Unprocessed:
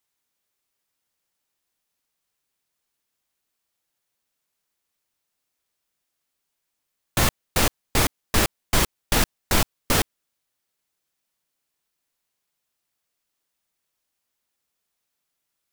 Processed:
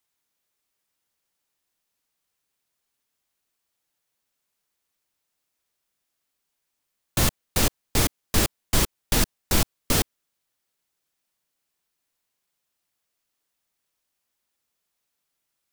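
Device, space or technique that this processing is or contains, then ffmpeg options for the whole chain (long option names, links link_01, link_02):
one-band saturation: -filter_complex "[0:a]acrossover=split=480|3300[link_01][link_02][link_03];[link_02]asoftclip=type=tanh:threshold=-27.5dB[link_04];[link_01][link_04][link_03]amix=inputs=3:normalize=0"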